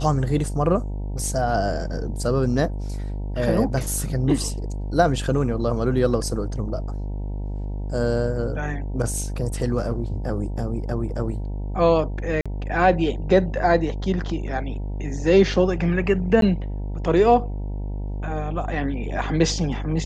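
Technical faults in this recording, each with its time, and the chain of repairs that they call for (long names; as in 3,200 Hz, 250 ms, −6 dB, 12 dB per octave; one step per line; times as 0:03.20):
mains buzz 50 Hz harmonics 19 −28 dBFS
0:12.41–0:12.46: drop-out 46 ms
0:16.41–0:16.42: drop-out 12 ms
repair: hum removal 50 Hz, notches 19
repair the gap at 0:12.41, 46 ms
repair the gap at 0:16.41, 12 ms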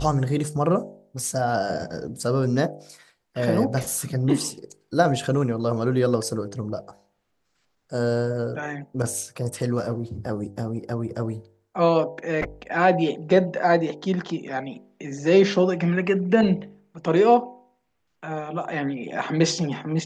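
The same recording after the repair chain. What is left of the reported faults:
none of them is left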